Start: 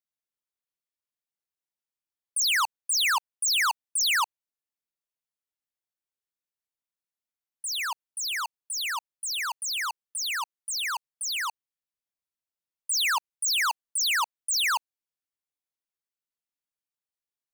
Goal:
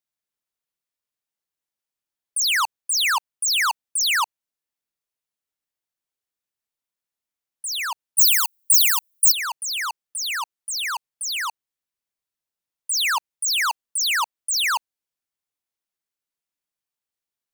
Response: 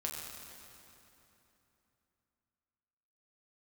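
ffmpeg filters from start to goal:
-filter_complex "[0:a]asettb=1/sr,asplit=3[a][b][c];[a]atrim=end=8.184[d];[b]atrim=start=8.18:end=9.32,asetpts=PTS-STARTPTS,afade=t=in:d=0.004:c=qsin,afade=t=out:st=1.136:d=0.004:c=qsin,aemphasis=mode=production:type=riaa[e];[c]atrim=start=9.316[f];[d][e]acrossfade=d=0.004:c1=hsin:c2=qsin[g];[g][f]acrossfade=d=0.004:c1=qsin:c2=hsin,volume=3.5dB"

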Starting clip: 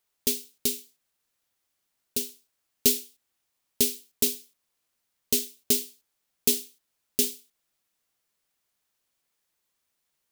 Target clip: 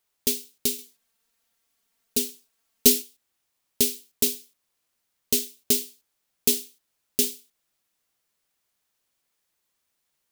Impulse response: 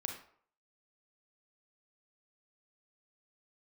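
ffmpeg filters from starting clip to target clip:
-filter_complex "[0:a]asettb=1/sr,asplit=3[a][b][c];[a]atrim=end=0.784[d];[b]atrim=start=0.78:end=3.02,asetpts=PTS-STARTPTS,afade=t=in:d=0.004:c=qsin,afade=t=out:st=2.236:d=0.004:c=qsin,aecho=1:1:4.4:0.96,atrim=end_sample=98784[e];[c]atrim=start=3.016[f];[d][e]acrossfade=d=0.004:c1=hsin:c2=qsin[g];[g][f]acrossfade=d=0.004:c1=qsin:c2=hsin,volume=1.5dB"

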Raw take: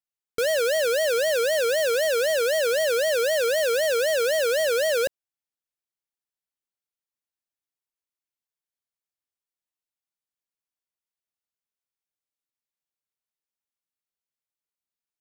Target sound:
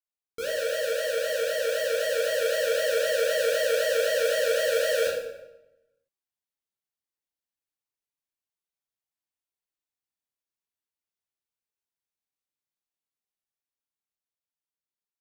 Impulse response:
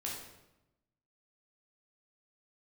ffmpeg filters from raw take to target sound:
-filter_complex "[0:a]dynaudnorm=f=400:g=11:m=3.5dB[a];[1:a]atrim=start_sample=2205[b];[a][b]afir=irnorm=-1:irlink=0,volume=-6.5dB"

